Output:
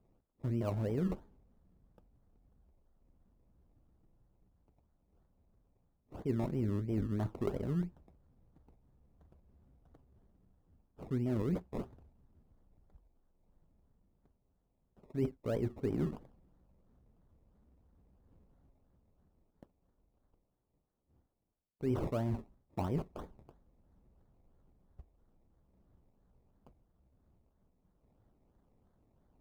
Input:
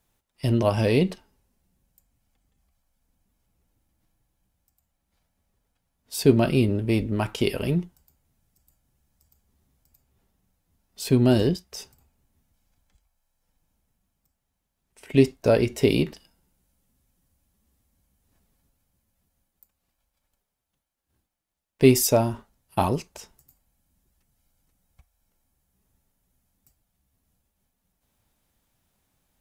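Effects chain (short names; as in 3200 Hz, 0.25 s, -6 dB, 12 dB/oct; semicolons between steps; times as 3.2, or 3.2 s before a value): decimation with a swept rate 23×, swing 60% 3 Hz; tilt shelf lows +10 dB, about 1100 Hz; reverse; compressor 6:1, threshold -26 dBFS, peak gain reduction 22 dB; reverse; gain -6.5 dB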